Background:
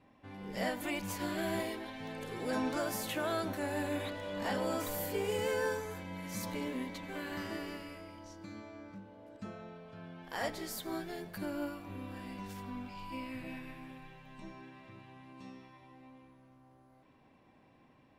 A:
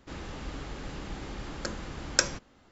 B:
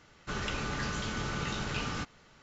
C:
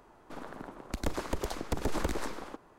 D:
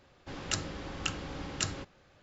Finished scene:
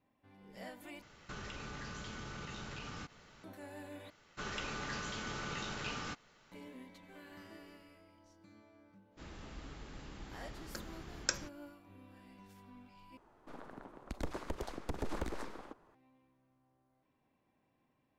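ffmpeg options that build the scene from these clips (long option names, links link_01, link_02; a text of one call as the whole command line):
ffmpeg -i bed.wav -i cue0.wav -i cue1.wav -i cue2.wav -filter_complex "[2:a]asplit=2[link_01][link_02];[0:a]volume=-13.5dB[link_03];[link_01]acompressor=threshold=-42dB:ratio=6:attack=3.2:release=140:knee=1:detection=peak[link_04];[link_02]equalizer=frequency=62:width=0.36:gain=-7[link_05];[1:a]equalizer=frequency=580:width=1.5:gain=-3[link_06];[3:a]highshelf=frequency=5200:gain=-7[link_07];[link_03]asplit=4[link_08][link_09][link_10][link_11];[link_08]atrim=end=1.024[link_12];[link_04]atrim=end=2.42,asetpts=PTS-STARTPTS,volume=-0.5dB[link_13];[link_09]atrim=start=3.436:end=4.104[link_14];[link_05]atrim=end=2.42,asetpts=PTS-STARTPTS,volume=-5dB[link_15];[link_10]atrim=start=6.516:end=13.174[link_16];[link_07]atrim=end=2.78,asetpts=PTS-STARTPTS,volume=-7dB[link_17];[link_11]atrim=start=15.946[link_18];[link_06]atrim=end=2.71,asetpts=PTS-STARTPTS,volume=-10dB,afade=type=in:duration=0.1,afade=type=out:start_time=2.61:duration=0.1,adelay=9100[link_19];[link_12][link_13]acrossfade=duration=0.004:curve1=hsin:curve2=hsin[link_20];[link_20][link_14]acrossfade=duration=0.004:curve1=hsin:curve2=hsin[link_21];[link_21][link_15]acrossfade=duration=0.004:curve1=hsin:curve2=hsin[link_22];[link_22][link_16]acrossfade=duration=0.004:curve1=hsin:curve2=hsin[link_23];[link_23][link_17]acrossfade=duration=0.004:curve1=hsin:curve2=hsin[link_24];[link_24][link_18]acrossfade=duration=0.004:curve1=hsin:curve2=hsin[link_25];[link_25][link_19]amix=inputs=2:normalize=0" out.wav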